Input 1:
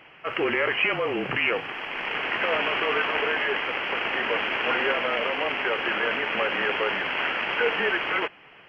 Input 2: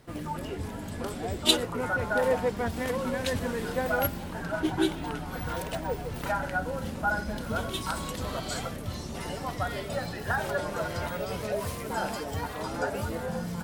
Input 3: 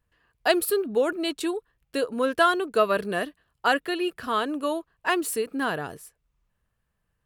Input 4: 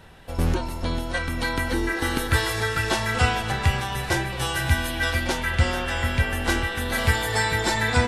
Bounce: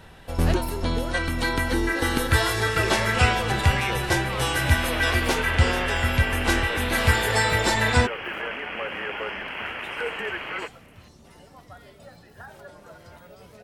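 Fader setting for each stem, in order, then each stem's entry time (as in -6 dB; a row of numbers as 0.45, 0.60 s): -6.0, -14.5, -11.5, +1.0 dB; 2.40, 2.10, 0.00, 0.00 s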